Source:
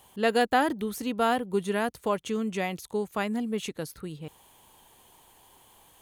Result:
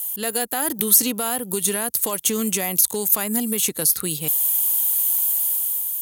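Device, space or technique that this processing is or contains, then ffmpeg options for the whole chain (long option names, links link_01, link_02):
FM broadcast chain: -filter_complex "[0:a]highpass=41,dynaudnorm=framelen=220:gausssize=7:maxgain=8dB,acrossover=split=100|1800|7700[link_01][link_02][link_03][link_04];[link_01]acompressor=threshold=-58dB:ratio=4[link_05];[link_02]acompressor=threshold=-19dB:ratio=4[link_06];[link_03]acompressor=threshold=-40dB:ratio=4[link_07];[link_04]acompressor=threshold=-51dB:ratio=4[link_08];[link_05][link_06][link_07][link_08]amix=inputs=4:normalize=0,aemphasis=mode=production:type=75fm,alimiter=limit=-17.5dB:level=0:latency=1:release=185,asoftclip=type=hard:threshold=-19dB,lowpass=frequency=15000:width=0.5412,lowpass=frequency=15000:width=1.3066,aemphasis=mode=production:type=75fm,volume=2dB"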